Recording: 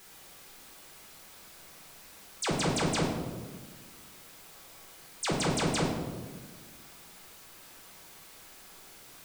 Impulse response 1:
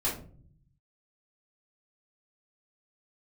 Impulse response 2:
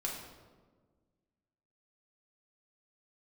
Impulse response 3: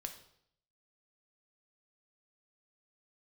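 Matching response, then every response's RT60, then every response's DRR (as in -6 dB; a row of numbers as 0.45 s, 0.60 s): 2; 0.50 s, 1.5 s, 0.70 s; -8.5 dB, -2.5 dB, 4.5 dB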